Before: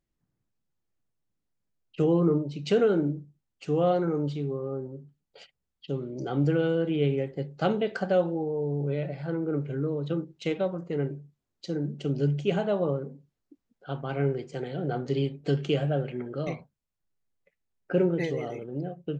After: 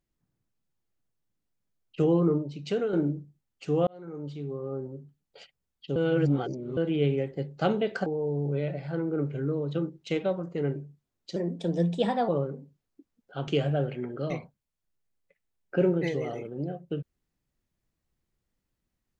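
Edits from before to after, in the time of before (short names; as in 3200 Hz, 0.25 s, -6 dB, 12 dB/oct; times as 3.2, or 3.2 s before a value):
2.15–2.93 fade out, to -8 dB
3.87–4.85 fade in linear
5.96–6.77 reverse
8.06–8.41 cut
11.71–12.81 speed 119%
14–15.64 cut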